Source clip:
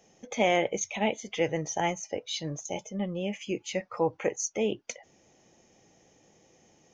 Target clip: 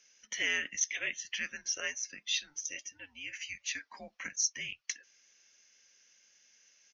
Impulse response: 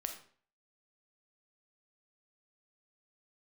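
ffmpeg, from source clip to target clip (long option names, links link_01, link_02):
-af "asuperpass=centerf=5000:order=4:qfactor=0.62,aresample=16000,aresample=44100,afreqshift=-280,volume=2.5dB"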